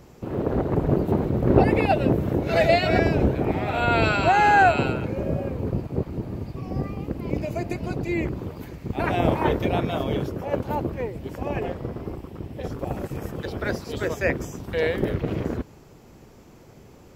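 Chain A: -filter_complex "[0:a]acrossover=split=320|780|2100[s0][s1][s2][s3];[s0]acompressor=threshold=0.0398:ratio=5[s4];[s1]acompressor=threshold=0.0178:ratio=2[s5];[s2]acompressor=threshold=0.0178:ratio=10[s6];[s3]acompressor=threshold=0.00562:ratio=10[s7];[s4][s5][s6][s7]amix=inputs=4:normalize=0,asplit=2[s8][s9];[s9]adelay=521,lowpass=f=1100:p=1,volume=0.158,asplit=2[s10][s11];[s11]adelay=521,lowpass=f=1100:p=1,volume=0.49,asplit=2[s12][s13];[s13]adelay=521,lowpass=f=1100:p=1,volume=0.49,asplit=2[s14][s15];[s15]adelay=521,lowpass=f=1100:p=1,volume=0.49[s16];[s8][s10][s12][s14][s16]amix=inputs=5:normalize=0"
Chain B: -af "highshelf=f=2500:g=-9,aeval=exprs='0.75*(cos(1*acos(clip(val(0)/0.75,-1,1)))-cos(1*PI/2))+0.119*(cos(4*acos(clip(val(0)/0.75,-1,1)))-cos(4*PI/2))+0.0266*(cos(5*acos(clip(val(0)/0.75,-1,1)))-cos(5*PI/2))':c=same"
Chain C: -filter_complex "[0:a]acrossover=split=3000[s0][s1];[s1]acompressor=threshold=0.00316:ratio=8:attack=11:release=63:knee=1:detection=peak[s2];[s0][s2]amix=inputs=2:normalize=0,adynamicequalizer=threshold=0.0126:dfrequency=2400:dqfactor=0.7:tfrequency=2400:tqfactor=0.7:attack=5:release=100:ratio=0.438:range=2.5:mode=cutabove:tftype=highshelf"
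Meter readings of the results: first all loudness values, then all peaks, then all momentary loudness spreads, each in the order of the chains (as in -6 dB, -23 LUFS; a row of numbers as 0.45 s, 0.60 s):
-30.0 LUFS, -23.5 LUFS, -24.5 LUFS; -13.0 dBFS, -2.0 dBFS, -2.5 dBFS; 9 LU, 13 LU, 13 LU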